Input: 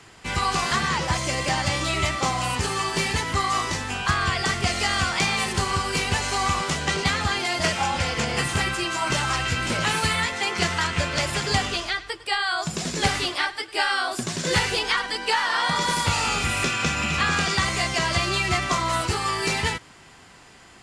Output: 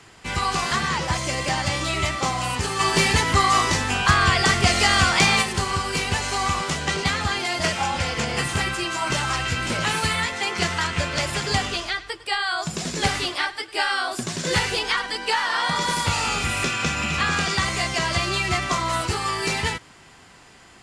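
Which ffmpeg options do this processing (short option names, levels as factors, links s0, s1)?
-filter_complex "[0:a]asplit=3[s0][s1][s2];[s0]afade=t=out:st=2.79:d=0.02[s3];[s1]acontrast=43,afade=t=in:st=2.79:d=0.02,afade=t=out:st=5.41:d=0.02[s4];[s2]afade=t=in:st=5.41:d=0.02[s5];[s3][s4][s5]amix=inputs=3:normalize=0"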